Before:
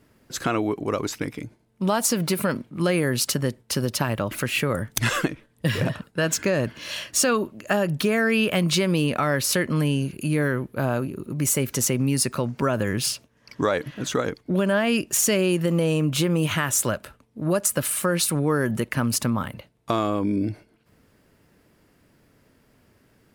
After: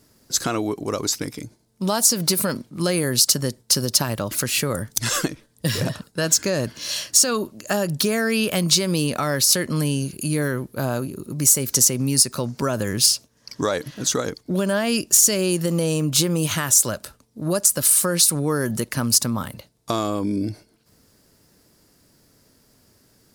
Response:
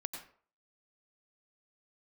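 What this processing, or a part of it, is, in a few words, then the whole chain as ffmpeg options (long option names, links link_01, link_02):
over-bright horn tweeter: -af "highshelf=frequency=3600:width_type=q:width=1.5:gain=9.5,alimiter=limit=-3.5dB:level=0:latency=1:release=187"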